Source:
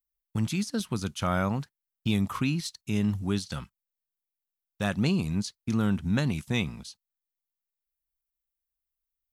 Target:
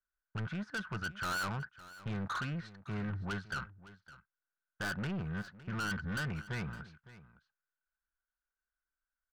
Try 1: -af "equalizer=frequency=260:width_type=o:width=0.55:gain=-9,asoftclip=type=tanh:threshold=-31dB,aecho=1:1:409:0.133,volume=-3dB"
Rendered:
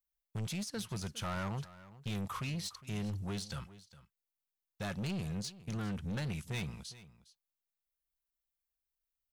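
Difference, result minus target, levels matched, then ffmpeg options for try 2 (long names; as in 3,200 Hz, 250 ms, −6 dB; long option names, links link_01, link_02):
2,000 Hz band −8.0 dB; echo 151 ms early
-af "lowpass=frequency=1500:width_type=q:width=14,equalizer=frequency=260:width_type=o:width=0.55:gain=-9,asoftclip=type=tanh:threshold=-31dB,aecho=1:1:560:0.133,volume=-3dB"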